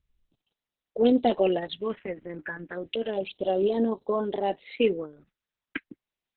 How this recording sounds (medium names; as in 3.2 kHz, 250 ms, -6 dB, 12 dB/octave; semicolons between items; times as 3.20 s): phasing stages 4, 0.32 Hz, lowest notch 650–2100 Hz; Opus